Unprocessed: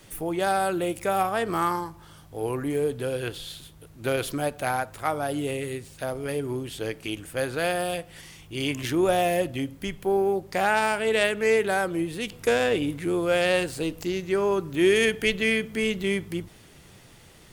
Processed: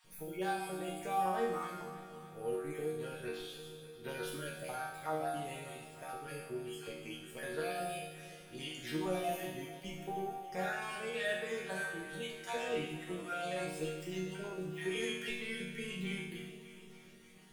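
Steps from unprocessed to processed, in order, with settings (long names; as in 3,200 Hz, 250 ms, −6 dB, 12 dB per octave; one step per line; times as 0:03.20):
time-frequency cells dropped at random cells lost 32%
brickwall limiter −17 dBFS, peak gain reduction 7.5 dB
resonators tuned to a chord D#3 minor, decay 0.84 s
on a send: delay that swaps between a low-pass and a high-pass 148 ms, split 840 Hz, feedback 81%, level −12 dB
on the sum: level +11 dB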